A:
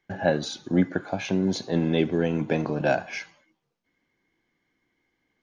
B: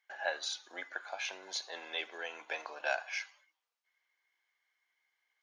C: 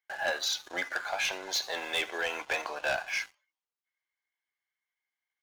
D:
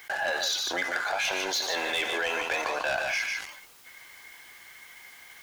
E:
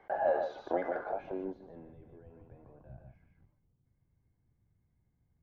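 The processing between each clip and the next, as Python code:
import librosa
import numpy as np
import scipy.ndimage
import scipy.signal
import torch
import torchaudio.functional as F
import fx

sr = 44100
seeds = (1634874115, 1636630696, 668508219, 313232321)

y1 = scipy.signal.sosfilt(scipy.signal.bessel(4, 1100.0, 'highpass', norm='mag', fs=sr, output='sos'), x)
y1 = y1 * librosa.db_to_amplitude(-3.0)
y2 = fx.rider(y1, sr, range_db=3, speed_s=0.5)
y2 = fx.leveller(y2, sr, passes=3)
y2 = y2 * librosa.db_to_amplitude(-1.5)
y3 = y2 + 10.0 ** (-9.5 / 20.0) * np.pad(y2, (int(149 * sr / 1000.0), 0))[:len(y2)]
y3 = fx.env_flatten(y3, sr, amount_pct=70)
y4 = fx.filter_sweep_lowpass(y3, sr, from_hz=640.0, to_hz=120.0, start_s=0.91, end_s=1.98, q=1.7)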